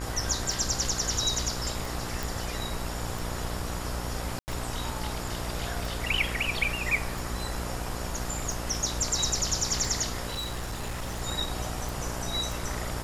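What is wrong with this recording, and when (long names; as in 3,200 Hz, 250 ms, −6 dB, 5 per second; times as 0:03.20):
mains buzz 60 Hz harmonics 33 −36 dBFS
scratch tick 45 rpm
0:02.23: click
0:04.39–0:04.48: drop-out 89 ms
0:10.30–0:11.22: clipping −29.5 dBFS
0:11.89: click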